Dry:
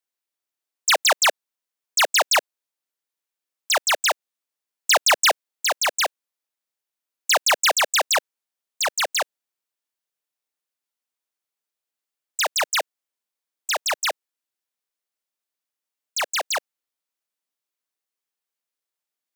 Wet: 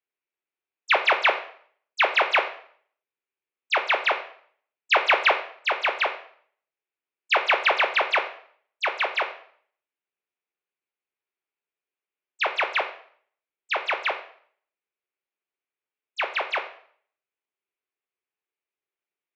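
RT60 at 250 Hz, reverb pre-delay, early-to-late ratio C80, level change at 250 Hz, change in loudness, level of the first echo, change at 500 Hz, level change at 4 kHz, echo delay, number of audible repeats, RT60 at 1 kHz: 0.60 s, 5 ms, 14.0 dB, +3.0 dB, -2.5 dB, none, -1.0 dB, -7.0 dB, none, none, 0.55 s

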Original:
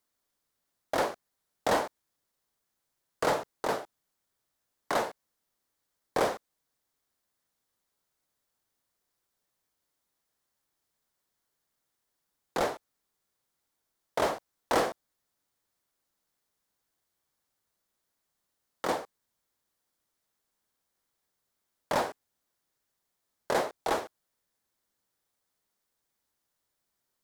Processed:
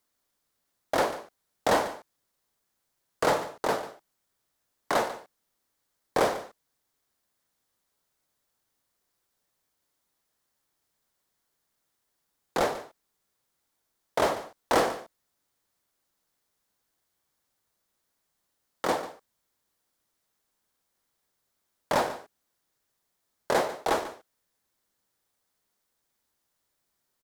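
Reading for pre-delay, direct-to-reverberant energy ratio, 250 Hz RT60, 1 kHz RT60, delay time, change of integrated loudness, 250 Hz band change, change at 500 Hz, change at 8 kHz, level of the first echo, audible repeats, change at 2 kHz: none, none, none, none, 0.144 s, +3.0 dB, +3.0 dB, +3.0 dB, +3.0 dB, -14.5 dB, 1, +3.0 dB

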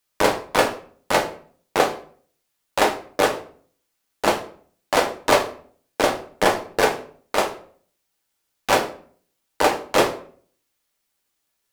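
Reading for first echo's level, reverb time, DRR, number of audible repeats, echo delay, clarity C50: none, 0.50 s, 4.0 dB, none, none, 12.5 dB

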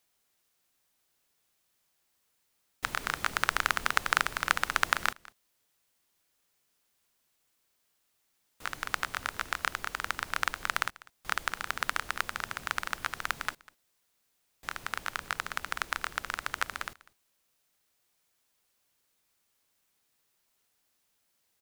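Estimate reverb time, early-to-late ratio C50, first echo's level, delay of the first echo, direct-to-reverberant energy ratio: none, none, -22.0 dB, 0.197 s, none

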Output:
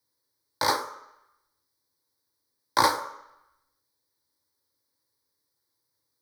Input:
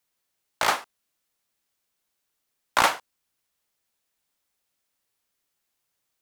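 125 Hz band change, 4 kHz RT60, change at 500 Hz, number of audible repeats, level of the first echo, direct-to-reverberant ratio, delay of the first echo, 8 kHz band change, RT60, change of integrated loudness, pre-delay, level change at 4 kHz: +3.5 dB, 0.85 s, 0.0 dB, none, none, 6.5 dB, none, -2.0 dB, 0.80 s, -1.5 dB, 3 ms, -0.5 dB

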